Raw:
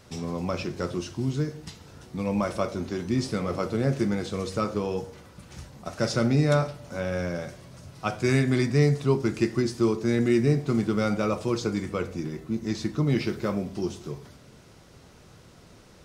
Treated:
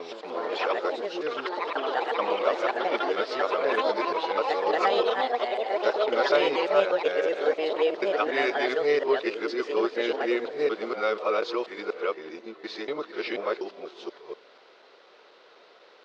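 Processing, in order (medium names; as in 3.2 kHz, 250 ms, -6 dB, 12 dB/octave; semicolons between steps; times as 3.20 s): time reversed locally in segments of 243 ms; ever faster or slower copies 115 ms, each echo +5 st, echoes 3; elliptic band-pass 430–4100 Hz, stop band 80 dB; trim +3 dB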